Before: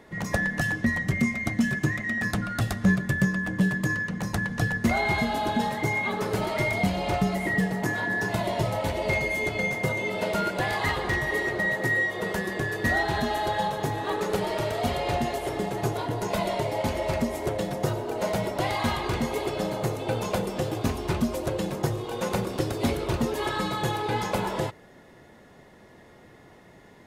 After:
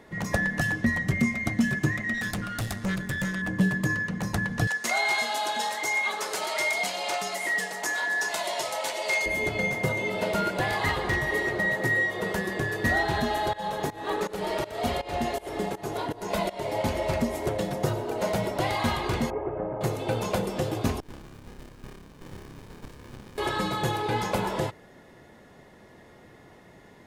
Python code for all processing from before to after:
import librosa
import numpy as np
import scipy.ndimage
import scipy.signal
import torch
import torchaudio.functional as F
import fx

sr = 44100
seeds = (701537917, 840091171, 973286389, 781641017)

y = fx.chain(x, sr, fx.high_shelf(hz=3800.0, db=7.5),
    fx.tube_stage(drive_db=25.0, bias=0.55), at=(2.14, 3.42))
y = fx.chain(y, sr, fx.highpass(hz=640.0, slope=12),
    fx.peak_eq(hz=7000.0, db=10.0, octaves=1.7), at=(4.67, 9.26))
y = fx.chain(y, sr, fx.peak_eq(hz=120.0, db=-10.5, octaves=0.47),
    fx.volume_shaper(bpm=81, per_beat=2, depth_db=-19, release_ms=289.0, shape='fast start'), at=(13.53, 16.74))
y = fx.chain(y, sr, fx.gaussian_blur(sigma=6.0),
    fx.peak_eq(hz=200.0, db=-10.0, octaves=0.63), at=(19.3, 19.81))
y = fx.chain(y, sr, fx.cheby_ripple_highpass(hz=1200.0, ripple_db=6),
    fx.room_flutter(wall_m=5.0, rt60_s=1.1),
    fx.running_max(window=65), at=(21.0, 23.38))